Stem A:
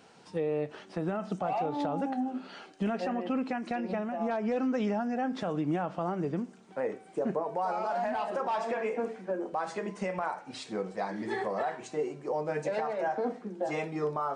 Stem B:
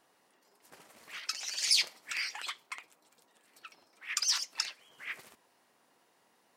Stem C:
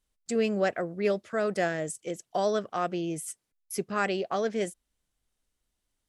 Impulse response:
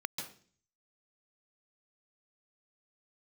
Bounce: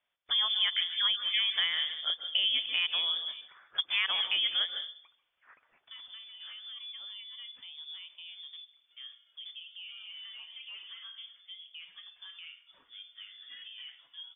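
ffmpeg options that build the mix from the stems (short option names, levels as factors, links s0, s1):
-filter_complex "[0:a]adelay=2200,volume=0.158,asplit=3[s0][s1][s2];[s0]atrim=end=3.48,asetpts=PTS-STARTPTS,afade=t=out:st=3.476:d=0.004:c=hsin[s3];[s1]atrim=start=3.48:end=5.87,asetpts=PTS-STARTPTS,volume=0[s4];[s2]atrim=start=5.87,asetpts=PTS-STARTPTS,afade=t=in:d=0.004:c=hsin[s5];[s3][s4][s5]concat=n=3:v=0:a=1,asplit=2[s6][s7];[s7]volume=0.106[s8];[1:a]acompressor=threshold=0.0126:ratio=6,adelay=1400,volume=0.112,asplit=2[s9][s10];[s10]volume=0.335[s11];[2:a]highpass=220,volume=1.19,asplit=3[s12][s13][s14];[s13]volume=0.631[s15];[s14]apad=whole_len=351411[s16];[s9][s16]sidechaincompress=threshold=0.0251:ratio=8:attack=16:release=127[s17];[3:a]atrim=start_sample=2205[s18];[s8][s11][s15]amix=inputs=3:normalize=0[s19];[s19][s18]afir=irnorm=-1:irlink=0[s20];[s6][s17][s12][s20]amix=inputs=4:normalize=0,lowpass=f=3100:t=q:w=0.5098,lowpass=f=3100:t=q:w=0.6013,lowpass=f=3100:t=q:w=0.9,lowpass=f=3100:t=q:w=2.563,afreqshift=-3700,acompressor=threshold=0.0398:ratio=3"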